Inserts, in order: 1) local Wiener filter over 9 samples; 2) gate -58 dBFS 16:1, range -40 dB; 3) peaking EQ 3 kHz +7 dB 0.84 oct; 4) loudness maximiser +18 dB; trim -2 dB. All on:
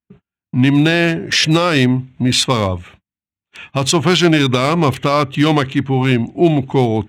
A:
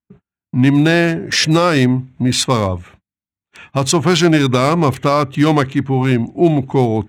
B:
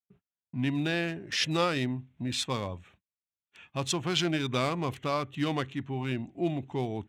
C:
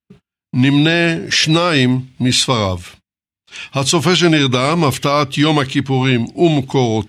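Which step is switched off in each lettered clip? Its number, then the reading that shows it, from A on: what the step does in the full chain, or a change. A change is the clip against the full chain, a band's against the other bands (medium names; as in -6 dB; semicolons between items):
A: 3, 4 kHz band -3.5 dB; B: 4, crest factor change +7.5 dB; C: 1, 8 kHz band +2.0 dB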